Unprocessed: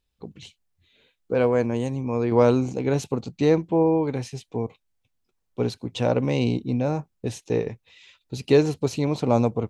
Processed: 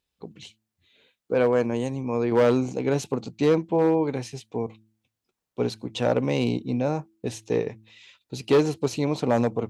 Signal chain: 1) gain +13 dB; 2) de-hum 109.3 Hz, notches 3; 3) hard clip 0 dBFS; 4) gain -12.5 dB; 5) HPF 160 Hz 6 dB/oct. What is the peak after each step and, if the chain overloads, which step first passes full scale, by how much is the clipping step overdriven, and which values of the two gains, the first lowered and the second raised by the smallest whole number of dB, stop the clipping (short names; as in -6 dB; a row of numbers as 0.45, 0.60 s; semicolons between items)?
+8.5, +8.5, 0.0, -12.5, -9.0 dBFS; step 1, 8.5 dB; step 1 +4 dB, step 4 -3.5 dB